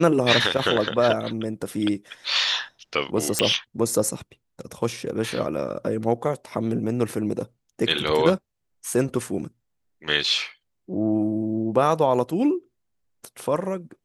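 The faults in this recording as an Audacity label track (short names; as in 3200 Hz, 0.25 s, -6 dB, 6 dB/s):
3.390000	3.390000	pop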